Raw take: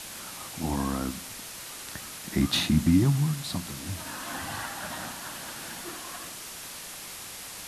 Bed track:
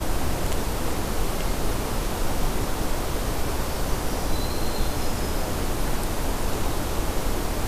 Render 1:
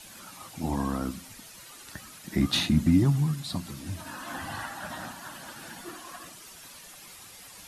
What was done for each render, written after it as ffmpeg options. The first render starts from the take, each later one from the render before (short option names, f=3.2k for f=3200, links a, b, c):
-af "afftdn=nr=10:nf=-41"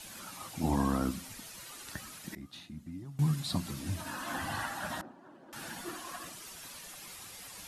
-filter_complex "[0:a]asettb=1/sr,asplit=3[a][b][c];[a]atrim=end=5.014[d];[b]atrim=start=5.01:end=5.53,asetpts=PTS-STARTPTS,afade=t=in:d=0.004:c=qsin,afade=t=out:st=0.516:d=0.004:c=qsin,bandpass=f=370:t=q:w=2.2[e];[c]atrim=start=5.526[f];[d][e]acrossfade=d=0.004:c1=hsin:c2=qsin[g];[g][f]acrossfade=d=0.004:c1=qsin:c2=hsin,asplit=3[h][i][j];[h]atrim=end=2.35,asetpts=PTS-STARTPTS,afade=t=out:st=1.86:d=0.49:c=log:silence=0.0707946[k];[i]atrim=start=2.35:end=3.19,asetpts=PTS-STARTPTS,volume=-23dB[l];[j]atrim=start=3.19,asetpts=PTS-STARTPTS,afade=t=in:d=0.49:c=log:silence=0.0707946[m];[k][l][m]concat=n=3:v=0:a=1"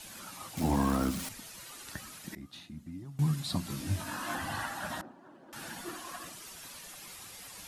-filter_complex "[0:a]asettb=1/sr,asplit=3[a][b][c];[a]atrim=end=0.574[d];[b]atrim=start=0.57:end=1.29,asetpts=PTS-STARTPTS,afade=t=in:d=0.004:c=qsin,afade=t=out:st=0.716:d=0.004:c=qsin,aeval=exprs='val(0)+0.5*0.015*sgn(val(0))':c=same[e];[c]atrim=start=1.286[f];[d][e]acrossfade=d=0.004:c1=hsin:c2=qsin[g];[g][f]acrossfade=d=0.004:c1=qsin:c2=hsin,asettb=1/sr,asplit=3[h][i][j];[h]atrim=end=3.684[k];[i]atrim=start=3.68:end=4.35,asetpts=PTS-STARTPTS,afade=t=in:d=0.004:c=qsin,afade=t=out:st=0.666:d=0.004:c=qsin,asplit=2[l][m];[m]adelay=20,volume=-2.5dB[n];[l][n]amix=inputs=2:normalize=0,atrim=end_sample=29547[o];[j]atrim=start=4.346[p];[k][o]acrossfade=d=0.004:c1=hsin:c2=qsin[q];[q][p]acrossfade=d=0.004:c1=qsin:c2=hsin"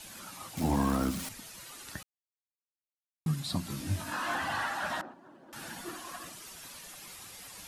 -filter_complex "[0:a]asettb=1/sr,asplit=3[a][b][c];[a]atrim=end=4.124[d];[b]atrim=start=4.12:end=5.14,asetpts=PTS-STARTPTS,afade=t=in:d=0.004:c=qsin,afade=t=out:st=1.016:d=0.004:c=qsin,asplit=2[e][f];[f]highpass=f=720:p=1,volume=13dB,asoftclip=type=tanh:threshold=-22.5dB[g];[e][g]amix=inputs=2:normalize=0,lowpass=f=2.9k:p=1,volume=-6dB[h];[c]atrim=start=5.136[i];[d][h]acrossfade=d=0.004:c1=hsin:c2=qsin[j];[j][i]acrossfade=d=0.004:c1=qsin:c2=hsin,asplit=3[k][l][m];[k]atrim=end=2.03,asetpts=PTS-STARTPTS,afade=t=out:st=2.026:d=0.004:c=hsin[n];[l]atrim=start=2.03:end=3.26,asetpts=PTS-STARTPTS,volume=0[o];[m]atrim=start=3.26,asetpts=PTS-STARTPTS,afade=t=in:d=0.004:c=hsin[p];[n][o][p]concat=n=3:v=0:a=1"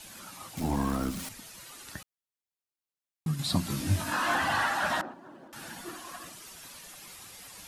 -filter_complex "[0:a]asettb=1/sr,asplit=3[a][b][c];[a]atrim=end=0.604[d];[b]atrim=start=0.6:end=1.17,asetpts=PTS-STARTPTS,afade=t=in:d=0.004:c=qsin,afade=t=out:st=0.566:d=0.004:c=qsin,aeval=exprs='if(lt(val(0),0),0.708*val(0),val(0))':c=same[e];[c]atrim=start=1.166[f];[d][e]acrossfade=d=0.004:c1=hsin:c2=qsin[g];[g][f]acrossfade=d=0.004:c1=qsin:c2=hsin,asettb=1/sr,asplit=3[h][i][j];[h]atrim=end=3.394[k];[i]atrim=start=3.39:end=5.48,asetpts=PTS-STARTPTS,afade=t=in:d=0.004:c=qsin,afade=t=out:st=2.086:d=0.004:c=qsin,acontrast=36[l];[j]atrim=start=5.476[m];[k][l]acrossfade=d=0.004:c1=hsin:c2=qsin[n];[n][m]acrossfade=d=0.004:c1=qsin:c2=hsin"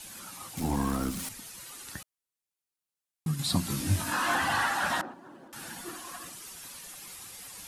-af "equalizer=f=10k:w=0.81:g=4.5,bandreject=f=630:w=12"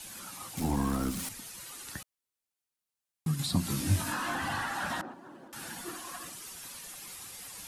-filter_complex "[0:a]acrossover=split=330[a][b];[b]acompressor=threshold=-32dB:ratio=5[c];[a][c]amix=inputs=2:normalize=0"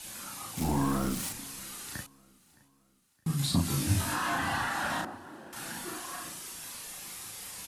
-filter_complex "[0:a]asplit=2[a][b];[b]adelay=36,volume=-2dB[c];[a][c]amix=inputs=2:normalize=0,aecho=1:1:617|1234|1851:0.0631|0.0259|0.0106"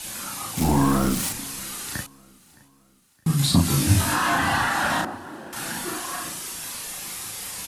-af "volume=9dB"